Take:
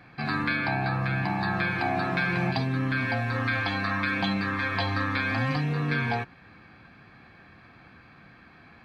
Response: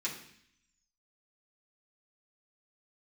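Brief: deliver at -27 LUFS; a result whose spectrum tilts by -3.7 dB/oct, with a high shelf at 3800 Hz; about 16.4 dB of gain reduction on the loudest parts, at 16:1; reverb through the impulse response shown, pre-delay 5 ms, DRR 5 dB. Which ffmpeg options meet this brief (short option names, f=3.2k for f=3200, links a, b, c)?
-filter_complex "[0:a]highshelf=f=3.8k:g=5.5,acompressor=threshold=-39dB:ratio=16,asplit=2[a][b];[1:a]atrim=start_sample=2205,adelay=5[c];[b][c]afir=irnorm=-1:irlink=0,volume=-8.5dB[d];[a][d]amix=inputs=2:normalize=0,volume=15dB"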